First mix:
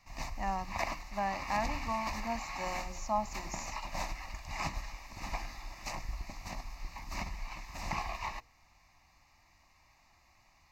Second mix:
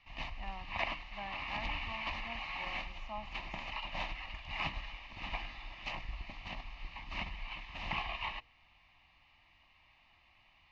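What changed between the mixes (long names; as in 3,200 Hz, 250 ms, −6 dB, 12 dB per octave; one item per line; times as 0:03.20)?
background +9.0 dB
master: add transistor ladder low-pass 3,300 Hz, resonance 80%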